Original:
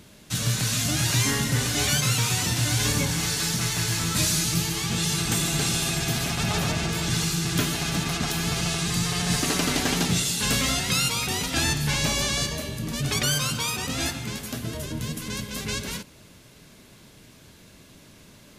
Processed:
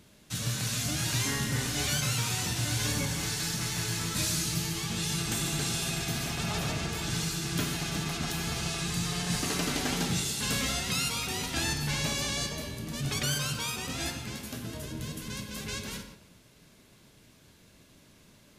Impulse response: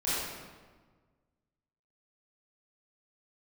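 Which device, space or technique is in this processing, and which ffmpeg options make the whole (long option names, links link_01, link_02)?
keyed gated reverb: -filter_complex "[0:a]asplit=3[link_01][link_02][link_03];[1:a]atrim=start_sample=2205[link_04];[link_02][link_04]afir=irnorm=-1:irlink=0[link_05];[link_03]apad=whole_len=819398[link_06];[link_05][link_06]sidechaingate=range=-33dB:threshold=-48dB:ratio=16:detection=peak,volume=-14.5dB[link_07];[link_01][link_07]amix=inputs=2:normalize=0,volume=-8dB"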